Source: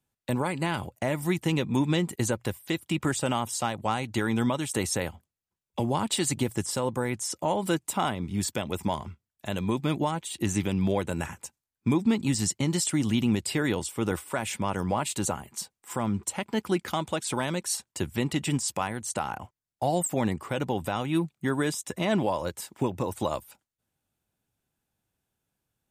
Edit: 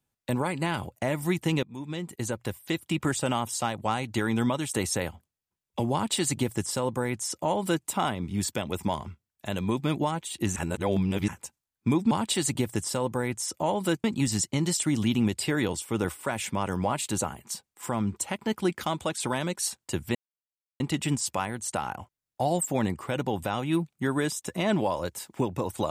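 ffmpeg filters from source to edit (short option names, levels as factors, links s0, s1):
-filter_complex "[0:a]asplit=7[s0][s1][s2][s3][s4][s5][s6];[s0]atrim=end=1.63,asetpts=PTS-STARTPTS,afade=t=out:st=1.626:d=0.004:c=hsin:silence=0.0794328[s7];[s1]atrim=start=1.63:end=10.562,asetpts=PTS-STARTPTS,afade=t=in:d=1.09:silence=0.0794328[s8];[s2]atrim=start=10.558:end=11.282,asetpts=PTS-STARTPTS,areverse[s9];[s3]atrim=start=11.278:end=12.112[s10];[s4]atrim=start=5.928:end=7.862[s11];[s5]atrim=start=12.108:end=18.22,asetpts=PTS-STARTPTS,afade=t=out:st=6.108:d=0.004:c=hsin,apad=pad_dur=0.65[s12];[s6]atrim=start=18.22,asetpts=PTS-STARTPTS,afade=t=in:d=0.004:c=hsin[s13];[s7][s8]concat=n=2:v=0:a=1[s14];[s14][s9]acrossfade=d=0.004:c1=hsin:c2=hsin[s15];[s15][s10]acrossfade=d=0.004:c1=hsin:c2=hsin[s16];[s16][s11]acrossfade=d=0.004:c1=hsin:c2=hsin[s17];[s12][s13]concat=n=2:v=0:a=1[s18];[s17][s18]acrossfade=d=0.004:c1=hsin:c2=hsin"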